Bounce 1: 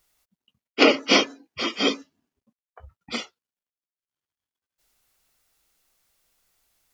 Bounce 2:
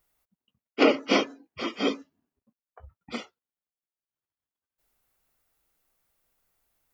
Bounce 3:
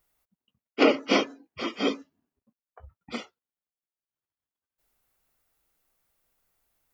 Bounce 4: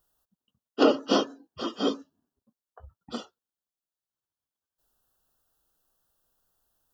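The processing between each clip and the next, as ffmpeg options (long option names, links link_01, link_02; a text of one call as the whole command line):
ffmpeg -i in.wav -af "equalizer=frequency=5200:width=0.47:gain=-9,volume=-2dB" out.wav
ffmpeg -i in.wav -af anull out.wav
ffmpeg -i in.wav -af "asuperstop=centerf=2200:order=4:qfactor=1.9" out.wav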